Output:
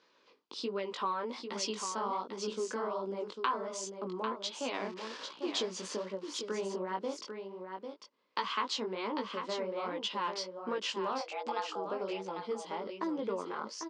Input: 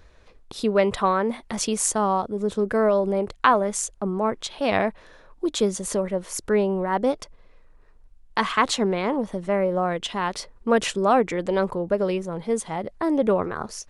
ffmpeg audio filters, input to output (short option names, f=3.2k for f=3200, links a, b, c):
-filter_complex "[0:a]asettb=1/sr,asplit=3[a][b][c];[a]atrim=end=4.744[d];[b]atrim=start=4.74:end=5.87,asetpts=PTS-STARTPTS,afade=t=in:d=0.004:c=qsin,afade=t=out:st=1.126:d=0.004:c=qsin,aeval=exprs='val(0)+0.5*0.0266*sgn(val(0))':c=same[e];[c]atrim=start=5.866[f];[d][e]acrossfade=d=0.004:c1=hsin:c2=qsin[g];[g][f]acrossfade=d=0.004:c1=qsin:c2=hsin,asettb=1/sr,asplit=3[h][i][j];[h]atrim=end=11.184[k];[i]atrim=start=11.18:end=11.85,asetpts=PTS-STARTPTS,afade=t=in:d=0.004:c=qsin,afade=t=out:st=0.666:d=0.004:c=qsin,afreqshift=300[l];[j]atrim=start=11.846[m];[k][l]acrossfade=d=0.004:c1=hsin:c2=qsin[n];[n][m]acrossfade=d=0.004:c1=qsin:c2=hsin,flanger=delay=15.5:depth=7.1:speed=1.3,acompressor=threshold=-26dB:ratio=6,highpass=f=240:w=0.5412,highpass=f=240:w=1.3066,equalizer=f=690:t=q:w=4:g=-9,equalizer=f=1k:t=q:w=4:g=5,equalizer=f=1.8k:t=q:w=4:g=-4,equalizer=f=3k:t=q:w=4:g=5,equalizer=f=4.8k:t=q:w=4:g=7,lowpass=f=6.4k:w=0.5412,lowpass=f=6.4k:w=1.3066,aecho=1:1:797:0.447,volume=-5dB"